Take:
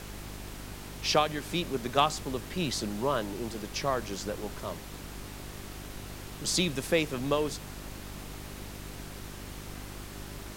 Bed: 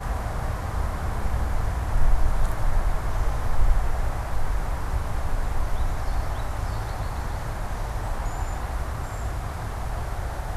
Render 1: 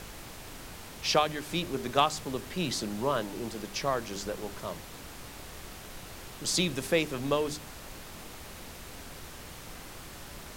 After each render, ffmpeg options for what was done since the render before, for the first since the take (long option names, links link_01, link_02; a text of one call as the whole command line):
ffmpeg -i in.wav -af "bandreject=frequency=50:width_type=h:width=4,bandreject=frequency=100:width_type=h:width=4,bandreject=frequency=150:width_type=h:width=4,bandreject=frequency=200:width_type=h:width=4,bandreject=frequency=250:width_type=h:width=4,bandreject=frequency=300:width_type=h:width=4,bandreject=frequency=350:width_type=h:width=4,bandreject=frequency=400:width_type=h:width=4" out.wav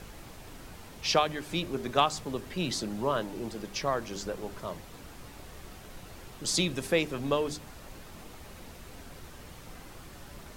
ffmpeg -i in.wav -af "afftdn=noise_reduction=6:noise_floor=-46" out.wav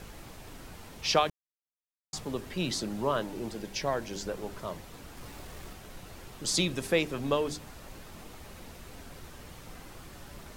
ffmpeg -i in.wav -filter_complex "[0:a]asettb=1/sr,asplit=3[link_01][link_02][link_03];[link_01]atrim=end=3.574[link_04];[link_02]atrim=start=3.57:end=4.27,asetpts=PTS-STARTPTS,afade=type=in:duration=0.004:curve=qsin,afade=type=out:start_time=0.696:duration=0.004:curve=qsin,bandreject=frequency=1200:width=5.2[link_05];[link_03]atrim=start=4.266[link_06];[link_04][link_05]acrossfade=duration=0.004:curve1=hsin:curve2=qsin[link_07];[link_07][link_06]acrossfade=duration=0.004:curve1=qsin:curve2=hsin,asettb=1/sr,asplit=3[link_08][link_09][link_10];[link_08]atrim=end=5.174[link_11];[link_09]atrim=start=5.17:end=5.73,asetpts=PTS-STARTPTS,afade=type=in:duration=0.004:curve=qsin,afade=type=out:start_time=0.556:duration=0.004:curve=qsin,aeval=exprs='val(0)+0.5*0.00299*sgn(val(0))':channel_layout=same[link_12];[link_10]atrim=start=5.726[link_13];[link_11][link_12]acrossfade=duration=0.004:curve1=hsin:curve2=qsin[link_14];[link_14][link_13]acrossfade=duration=0.004:curve1=qsin:curve2=hsin,asplit=3[link_15][link_16][link_17];[link_15]atrim=end=1.3,asetpts=PTS-STARTPTS,afade=type=out:start_time=1.296:duration=0.004:curve=hsin[link_18];[link_16]atrim=start=1.3:end=2.13,asetpts=PTS-STARTPTS,volume=0[link_19];[link_17]atrim=start=2.13,asetpts=PTS-STARTPTS,afade=type=in:duration=0.004:curve=hsin[link_20];[link_18][link_19][link_20]concat=n=3:v=0:a=1" out.wav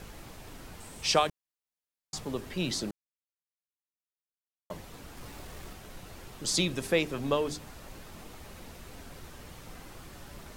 ffmpeg -i in.wav -filter_complex "[0:a]asettb=1/sr,asplit=3[link_01][link_02][link_03];[link_01]atrim=end=0.804[link_04];[link_02]atrim=start=0.8:end=1.27,asetpts=PTS-STARTPTS,afade=type=in:duration=0.004:curve=qsin,afade=type=out:start_time=0.466:duration=0.004:curve=qsin,equalizer=frequency=8300:width_type=o:width=0.39:gain=13[link_05];[link_03]atrim=start=1.266[link_06];[link_04][link_05]acrossfade=duration=0.004:curve1=hsin:curve2=qsin[link_07];[link_07][link_06]acrossfade=duration=0.004:curve1=qsin:curve2=hsin,asplit=3[link_08][link_09][link_10];[link_08]atrim=end=2.91,asetpts=PTS-STARTPTS,afade=type=out:start_time=2.906:duration=0.004:curve=hsin[link_11];[link_09]atrim=start=2.91:end=4.7,asetpts=PTS-STARTPTS,volume=0[link_12];[link_10]atrim=start=4.7,asetpts=PTS-STARTPTS,afade=type=in:duration=0.004:curve=hsin[link_13];[link_11][link_12][link_13]concat=n=3:v=0:a=1" out.wav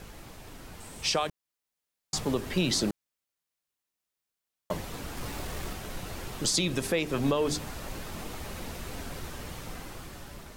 ffmpeg -i in.wav -af "dynaudnorm=framelen=600:gausssize=5:maxgain=8.5dB,alimiter=limit=-16.5dB:level=0:latency=1:release=229" out.wav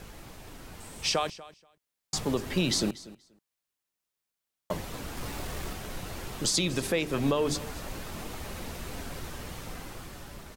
ffmpeg -i in.wav -af "aecho=1:1:240|480:0.119|0.0178" out.wav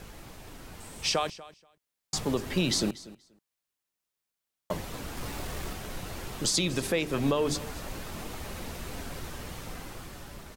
ffmpeg -i in.wav -af anull out.wav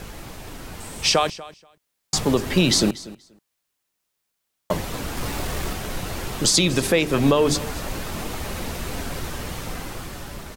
ffmpeg -i in.wav -af "volume=9dB" out.wav